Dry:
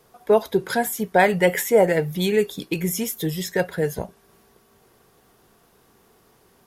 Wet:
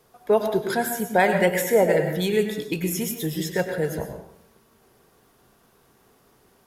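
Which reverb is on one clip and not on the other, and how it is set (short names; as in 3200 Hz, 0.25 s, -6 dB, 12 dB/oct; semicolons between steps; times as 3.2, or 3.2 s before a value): plate-style reverb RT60 0.69 s, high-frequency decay 0.6×, pre-delay 90 ms, DRR 5 dB; gain -2.5 dB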